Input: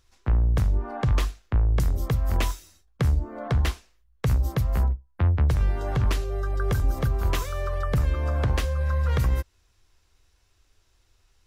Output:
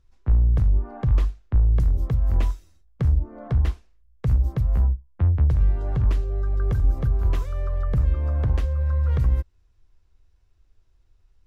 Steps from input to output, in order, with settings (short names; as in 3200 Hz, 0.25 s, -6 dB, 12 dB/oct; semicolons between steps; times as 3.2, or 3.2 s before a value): tilt -2.5 dB/oct; gain -7 dB